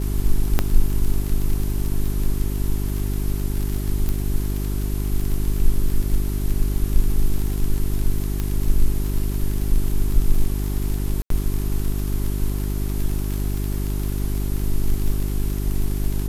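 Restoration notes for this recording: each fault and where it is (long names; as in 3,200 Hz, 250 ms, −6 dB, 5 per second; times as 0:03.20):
surface crackle 41 per second −24 dBFS
mains hum 50 Hz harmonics 8 −24 dBFS
0:00.59: click −4 dBFS
0:04.09: click −11 dBFS
0:08.40: click −12 dBFS
0:11.22–0:11.30: drop-out 83 ms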